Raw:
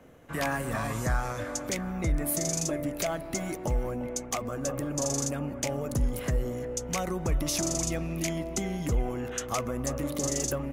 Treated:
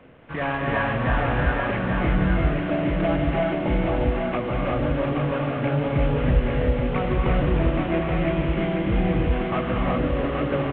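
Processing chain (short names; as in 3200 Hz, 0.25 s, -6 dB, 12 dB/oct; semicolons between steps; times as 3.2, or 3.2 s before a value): CVSD 16 kbps; on a send: echo 0.828 s -4.5 dB; on the sum: non-linear reverb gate 0.4 s rising, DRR -2 dB; gain +4 dB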